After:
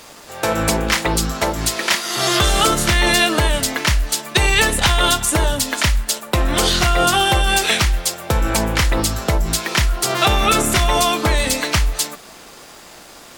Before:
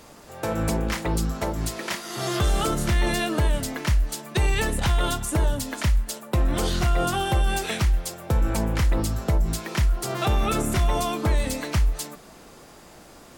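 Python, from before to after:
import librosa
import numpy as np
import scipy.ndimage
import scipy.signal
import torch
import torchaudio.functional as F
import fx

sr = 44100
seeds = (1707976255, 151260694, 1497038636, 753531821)

y = fx.curve_eq(x, sr, hz=(140.0, 3600.0, 15000.0), db=(0, 12, 8))
y = np.sign(y) * np.maximum(np.abs(y) - 10.0 ** (-49.0 / 20.0), 0.0)
y = y * librosa.db_to_amplitude(3.0)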